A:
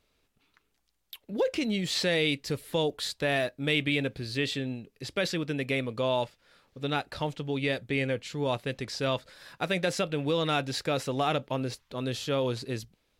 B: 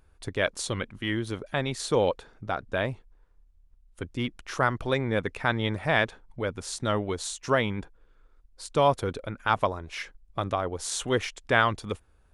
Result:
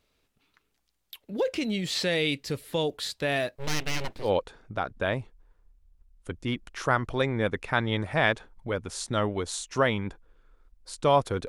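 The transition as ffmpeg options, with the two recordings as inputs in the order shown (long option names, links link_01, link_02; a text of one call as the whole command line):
ffmpeg -i cue0.wav -i cue1.wav -filter_complex "[0:a]asettb=1/sr,asplit=3[link_01][link_02][link_03];[link_01]atrim=end=3.554[link_04];[link_02]atrim=start=3.55:end=4.31,asetpts=PTS-STARTPTS,afade=type=in:duration=0.004:curve=qsin,afade=type=out:start_time=0.756:duration=0.004:curve=qsin,aeval=exprs='abs(val(0))':channel_layout=same[link_05];[link_03]atrim=start=4.306[link_06];[link_04][link_05]acrossfade=duration=0.004:curve1=hsin:curve2=qsin[link_07];[link_07][link_06]acrossfade=duration=0.004:curve1=qsin:curve2=hsin,apad=whole_dur=11.48,atrim=end=11.48,atrim=end=4.31,asetpts=PTS-STARTPTS[link_08];[1:a]atrim=start=1.93:end=9.2,asetpts=PTS-STARTPTS[link_09];[link_08][link_09]acrossfade=duration=0.1:curve1=tri:curve2=tri" out.wav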